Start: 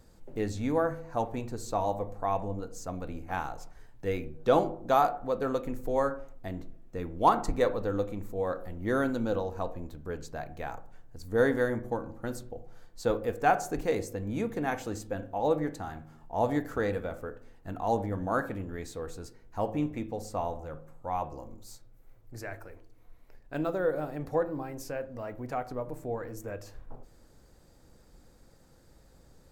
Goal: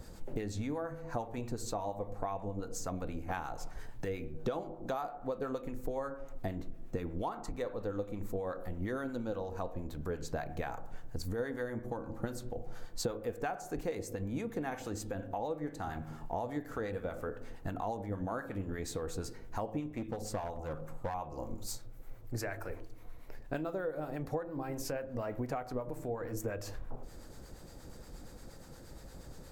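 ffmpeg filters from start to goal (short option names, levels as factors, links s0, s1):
-filter_complex "[0:a]acompressor=threshold=0.00794:ratio=12,acrossover=split=810[s0][s1];[s0]aeval=exprs='val(0)*(1-0.5/2+0.5/2*cos(2*PI*8.5*n/s))':c=same[s2];[s1]aeval=exprs='val(0)*(1-0.5/2-0.5/2*cos(2*PI*8.5*n/s))':c=same[s3];[s2][s3]amix=inputs=2:normalize=0,asettb=1/sr,asplit=3[s4][s5][s6];[s4]atrim=end=19.924[s7];[s5]atrim=start=19.92:end=21.14,asetpts=PTS-STARTPTS,afade=t=in:d=0.004:c=qsin,afade=t=out:st=1.216:d=0.004:c=qsin,aeval=exprs='clip(val(0),-1,0.00501)':c=same[s8];[s6]atrim=start=21.136[s9];[s7][s8]acrossfade=d=0.004:c1=hsin:c2=qsin[s10];[s10][s9]acrossfade=d=0.004:c1=qsin:c2=hsin,volume=3.35"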